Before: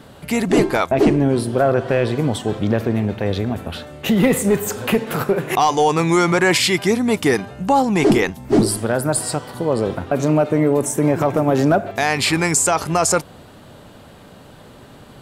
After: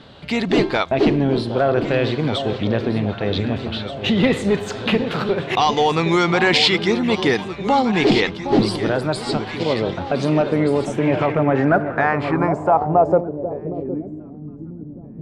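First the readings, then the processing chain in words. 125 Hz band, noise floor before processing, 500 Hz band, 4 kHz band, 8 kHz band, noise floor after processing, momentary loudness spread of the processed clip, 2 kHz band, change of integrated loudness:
-1.0 dB, -43 dBFS, -0.5 dB, +3.0 dB, -16.0 dB, -36 dBFS, 10 LU, 0.0 dB, -1.0 dB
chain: echo whose repeats swap between lows and highs 764 ms, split 970 Hz, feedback 70%, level -8.5 dB; low-pass sweep 3.9 kHz -> 240 Hz, 10.68–14.49 s; endings held to a fixed fall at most 460 dB/s; trim -2 dB

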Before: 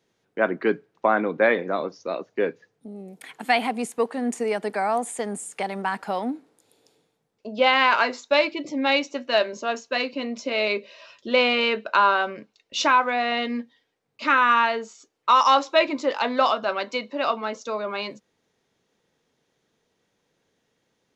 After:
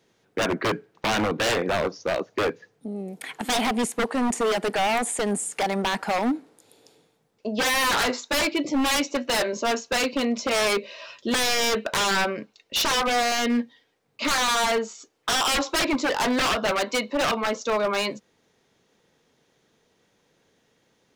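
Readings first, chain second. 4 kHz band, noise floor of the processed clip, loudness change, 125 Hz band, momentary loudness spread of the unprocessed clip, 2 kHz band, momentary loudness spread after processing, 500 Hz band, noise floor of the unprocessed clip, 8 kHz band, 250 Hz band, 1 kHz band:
+2.5 dB, -68 dBFS, -1.0 dB, no reading, 13 LU, -1.5 dB, 10 LU, -1.5 dB, -74 dBFS, +11.0 dB, +3.0 dB, -4.0 dB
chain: in parallel at 0 dB: peak limiter -16 dBFS, peak gain reduction 9.5 dB; on the sum: wavefolder -17.5 dBFS

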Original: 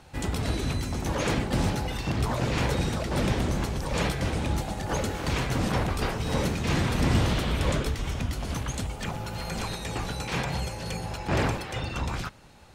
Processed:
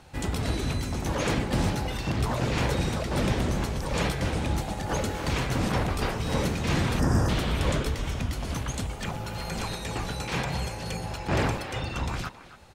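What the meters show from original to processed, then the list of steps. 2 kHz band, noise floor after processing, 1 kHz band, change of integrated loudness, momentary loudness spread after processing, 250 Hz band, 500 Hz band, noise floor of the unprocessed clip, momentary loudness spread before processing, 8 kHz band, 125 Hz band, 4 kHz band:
0.0 dB, -40 dBFS, 0.0 dB, 0.0 dB, 6 LU, 0.0 dB, 0.0 dB, -39 dBFS, 6 LU, 0.0 dB, 0.0 dB, 0.0 dB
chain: time-frequency box 6.99–7.29 s, 1.9–4.7 kHz -25 dB; speakerphone echo 270 ms, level -13 dB

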